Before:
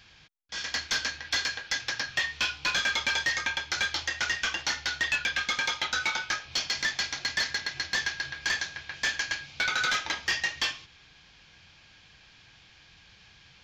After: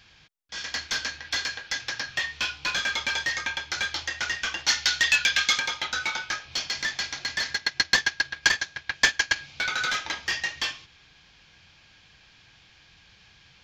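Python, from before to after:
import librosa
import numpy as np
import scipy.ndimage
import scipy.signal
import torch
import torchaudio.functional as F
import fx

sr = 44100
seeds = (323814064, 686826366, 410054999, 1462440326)

y = fx.high_shelf(x, sr, hz=2100.0, db=11.5, at=(4.67, 5.58), fade=0.02)
y = fx.transient(y, sr, attack_db=11, sustain_db=-8, at=(7.54, 9.36))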